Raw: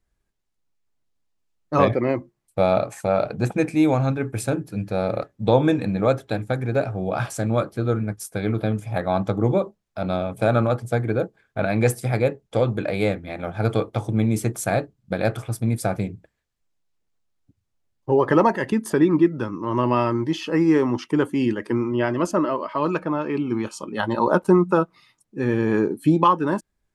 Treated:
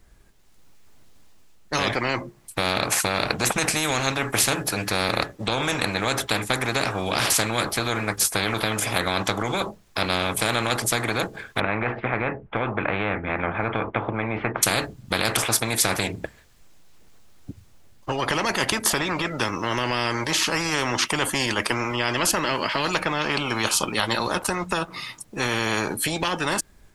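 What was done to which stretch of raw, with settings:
11.6–14.63 Bessel low-pass 1400 Hz, order 8
whole clip: AGC gain up to 6.5 dB; limiter -9.5 dBFS; spectral compressor 4:1; gain +5 dB

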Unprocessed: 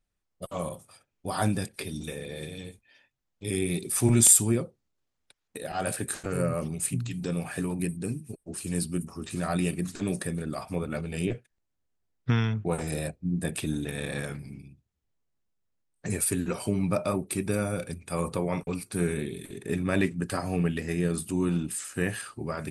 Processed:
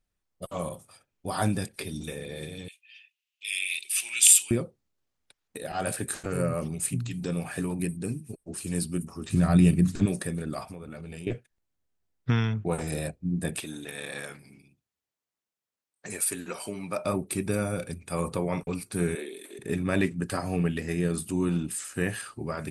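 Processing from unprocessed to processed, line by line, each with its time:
2.68–4.51 resonant high-pass 2700 Hz, resonance Q 6.5
9.3–10.06 tone controls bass +13 dB, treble -1 dB
10.67–11.27 compressor 12:1, threshold -36 dBFS
13.6–17.05 HPF 660 Hz 6 dB/oct
19.15–19.59 HPF 340 Hz 24 dB/oct

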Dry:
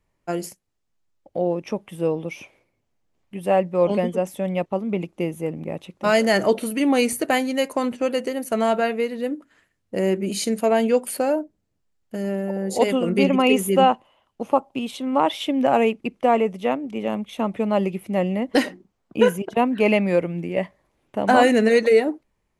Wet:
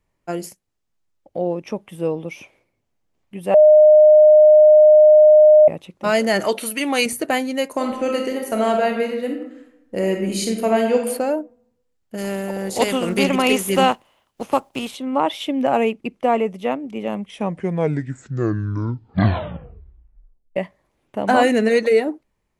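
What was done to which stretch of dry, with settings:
3.54–5.68 bleep 611 Hz -6 dBFS
6.4–7.06 tilt shelf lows -7 dB, about 690 Hz
7.71–11.04 reverb throw, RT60 0.86 s, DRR 2 dB
12.17–14.94 spectral contrast lowered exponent 0.69
17.09 tape stop 3.47 s

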